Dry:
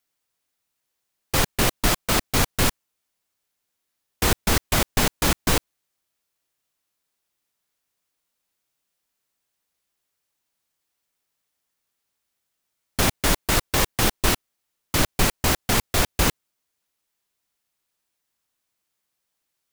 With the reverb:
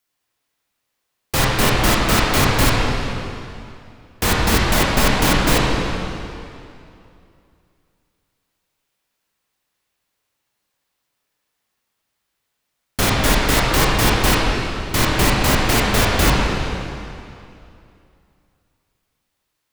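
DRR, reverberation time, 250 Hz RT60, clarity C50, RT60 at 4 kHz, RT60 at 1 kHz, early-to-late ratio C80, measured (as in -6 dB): -4.5 dB, 2.6 s, 2.7 s, -2.5 dB, 2.2 s, 2.6 s, -0.5 dB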